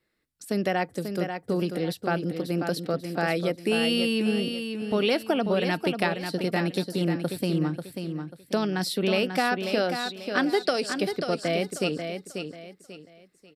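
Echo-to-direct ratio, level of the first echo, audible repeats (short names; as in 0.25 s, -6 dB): -6.5 dB, -7.0 dB, 3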